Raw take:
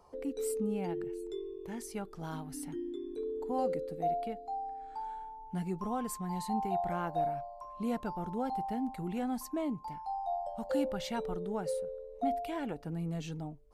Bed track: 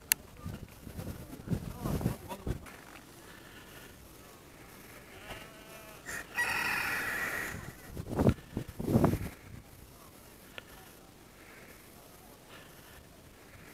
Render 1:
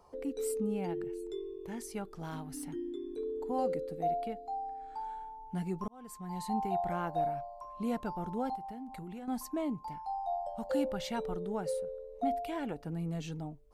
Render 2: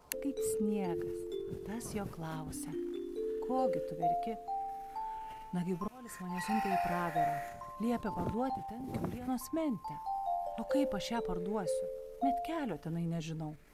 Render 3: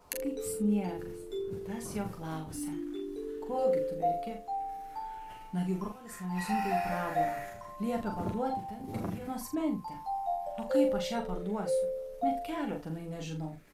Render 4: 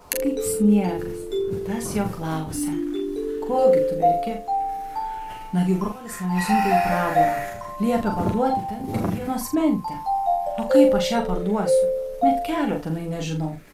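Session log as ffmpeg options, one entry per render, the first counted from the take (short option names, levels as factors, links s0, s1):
-filter_complex "[0:a]asettb=1/sr,asplit=3[s0][s1][s2];[s0]atrim=end=2.224[s3];[s1]atrim=start=2.22:end=2.64,asetpts=PTS-STARTPTS,afade=t=in:d=0.004:c=qsin,afade=t=out:st=0.416:d=0.004:c=qsin,asoftclip=type=hard:threshold=0.0178[s4];[s2]atrim=start=2.636[s5];[s3][s4]acrossfade=d=0.004:c1=hsin:c2=qsin[s6];[s6][s5]acrossfade=d=0.004:c1=qsin:c2=hsin,asettb=1/sr,asplit=3[s7][s8][s9];[s7]atrim=end=8.554[s10];[s8]atrim=start=8.55:end=9.28,asetpts=PTS-STARTPTS,afade=t=in:d=0.004:c=qsin,afade=t=out:st=0.726:d=0.004:c=qsin,acompressor=threshold=0.01:ratio=10:attack=3.2:release=140:knee=1:detection=peak[s11];[s9]atrim=start=9.276[s12];[s10][s11]acrossfade=d=0.004:c1=hsin:c2=qsin[s13];[s13][s12]acrossfade=d=0.004:c1=qsin:c2=hsin,asplit=2[s14][s15];[s14]atrim=end=5.88,asetpts=PTS-STARTPTS,afade=t=out:st=5.876:d=0.004:c=hsin[s16];[s15]atrim=start=5.88,asetpts=PTS-STARTPTS,afade=t=in:d=0.64[s17];[s16][s17]concat=n=2:v=0:a=1"
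-filter_complex "[1:a]volume=0.237[s0];[0:a][s0]amix=inputs=2:normalize=0"
-filter_complex "[0:a]asplit=2[s0][s1];[s1]adelay=38,volume=0.398[s2];[s0][s2]amix=inputs=2:normalize=0,aecho=1:1:10|44:0.531|0.447"
-af "volume=3.76"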